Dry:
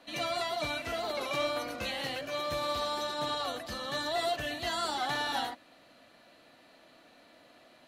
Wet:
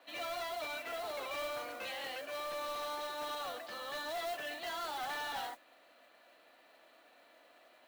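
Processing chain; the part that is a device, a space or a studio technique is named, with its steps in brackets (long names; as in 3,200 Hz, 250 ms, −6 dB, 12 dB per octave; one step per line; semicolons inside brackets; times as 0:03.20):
carbon microphone (band-pass filter 450–3,500 Hz; soft clipping −32.5 dBFS, distortion −13 dB; noise that follows the level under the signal 15 dB)
level −2.5 dB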